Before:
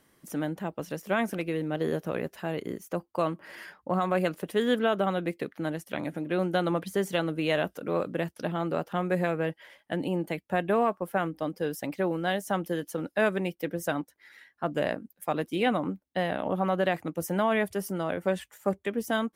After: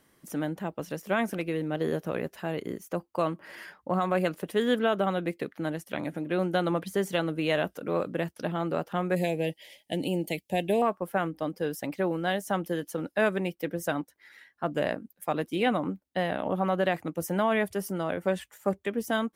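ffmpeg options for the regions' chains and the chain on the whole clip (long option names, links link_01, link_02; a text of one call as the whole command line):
ffmpeg -i in.wav -filter_complex "[0:a]asettb=1/sr,asplit=3[link_01][link_02][link_03];[link_01]atrim=end=9.164[link_04];[link_02]atrim=start=9.16:end=10.82,asetpts=PTS-STARTPTS,afade=type=in:duration=0.004:curve=qsin,afade=type=out:start_time=1.656:duration=0.004:curve=qsin,asuperstop=centerf=1300:order=4:qfactor=0.89,highshelf=frequency=2200:gain=10[link_05];[link_03]atrim=start=10.816[link_06];[link_04][link_05]acrossfade=duration=0.004:curve1=hsin:curve2=qsin[link_07];[link_07][link_06]acrossfade=duration=0.004:curve1=qsin:curve2=hsin" out.wav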